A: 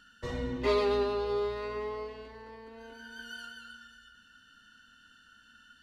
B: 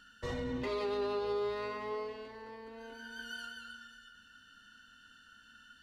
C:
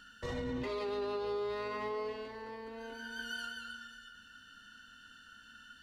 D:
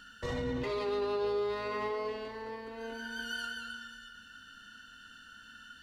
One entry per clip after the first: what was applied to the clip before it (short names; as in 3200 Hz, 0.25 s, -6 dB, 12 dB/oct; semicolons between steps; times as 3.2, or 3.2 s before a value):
limiter -27.5 dBFS, peak gain reduction 10.5 dB; notches 60/120/180/240/300/360/420 Hz
limiter -33 dBFS, peak gain reduction 6.5 dB; gain +3 dB
reverb RT60 1.0 s, pre-delay 48 ms, DRR 12 dB; gain +3 dB